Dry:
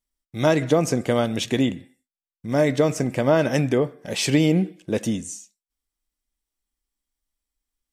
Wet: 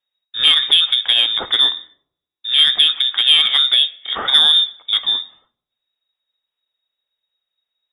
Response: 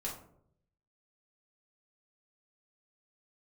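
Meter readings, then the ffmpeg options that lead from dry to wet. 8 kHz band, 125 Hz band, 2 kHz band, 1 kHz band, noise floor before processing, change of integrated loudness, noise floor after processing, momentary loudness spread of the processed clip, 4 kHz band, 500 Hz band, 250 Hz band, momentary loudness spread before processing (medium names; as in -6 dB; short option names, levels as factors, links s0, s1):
no reading, under -25 dB, +6.0 dB, -0.5 dB, under -85 dBFS, +9.5 dB, -85 dBFS, 9 LU, +24.0 dB, -18.5 dB, under -20 dB, 10 LU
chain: -filter_complex "[0:a]lowpass=f=3200:t=q:w=0.5098,lowpass=f=3200:t=q:w=0.6013,lowpass=f=3200:t=q:w=0.9,lowpass=f=3200:t=q:w=2.563,afreqshift=-3800,asplit=2[s0][s1];[1:a]atrim=start_sample=2205[s2];[s1][s2]afir=irnorm=-1:irlink=0,volume=0.188[s3];[s0][s3]amix=inputs=2:normalize=0,acontrast=37"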